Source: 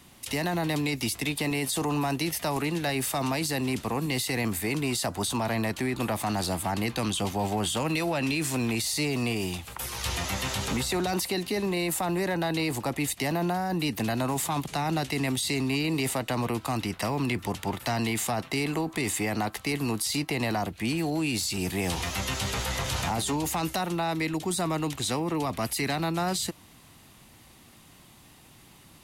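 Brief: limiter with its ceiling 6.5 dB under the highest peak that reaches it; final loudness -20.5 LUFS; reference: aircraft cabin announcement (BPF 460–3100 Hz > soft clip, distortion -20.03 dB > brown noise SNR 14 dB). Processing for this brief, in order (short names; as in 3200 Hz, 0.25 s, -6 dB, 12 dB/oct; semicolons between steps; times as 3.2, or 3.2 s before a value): limiter -23.5 dBFS; BPF 460–3100 Hz; soft clip -26.5 dBFS; brown noise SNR 14 dB; gain +16.5 dB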